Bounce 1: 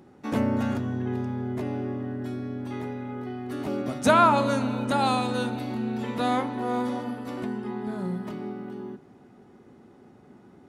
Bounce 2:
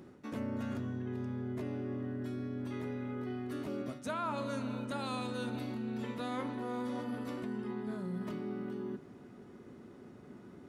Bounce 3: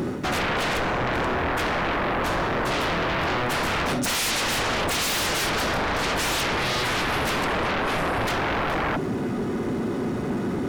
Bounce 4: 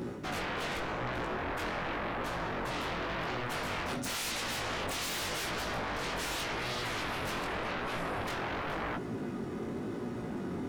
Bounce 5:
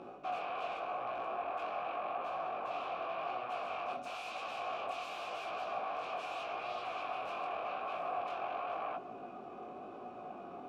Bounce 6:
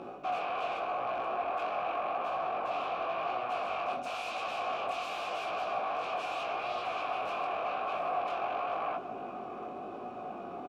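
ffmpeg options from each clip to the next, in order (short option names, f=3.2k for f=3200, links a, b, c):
-af "equalizer=f=800:w=6.9:g=-10.5,areverse,acompressor=threshold=-36dB:ratio=5,areverse"
-af "aeval=exprs='0.0531*sin(PI/2*10*val(0)/0.0531)':c=same,volume=4dB"
-af "flanger=delay=16.5:depth=6.8:speed=0.89,volume=-8dB"
-filter_complex "[0:a]aeval=exprs='val(0)+0.00398*(sin(2*PI*50*n/s)+sin(2*PI*2*50*n/s)/2+sin(2*PI*3*50*n/s)/3+sin(2*PI*4*50*n/s)/4+sin(2*PI*5*50*n/s)/5)':c=same,asplit=3[a][b][c];[a]bandpass=f=730:t=q:w=8,volume=0dB[d];[b]bandpass=f=1.09k:t=q:w=8,volume=-6dB[e];[c]bandpass=f=2.44k:t=q:w=8,volume=-9dB[f];[d][e][f]amix=inputs=3:normalize=0,volume=6.5dB"
-filter_complex "[0:a]asplit=2[a][b];[b]asoftclip=type=tanh:threshold=-36dB,volume=-7dB[c];[a][c]amix=inputs=2:normalize=0,asplit=2[d][e];[e]adelay=699.7,volume=-13dB,highshelf=f=4k:g=-15.7[f];[d][f]amix=inputs=2:normalize=0,volume=2.5dB"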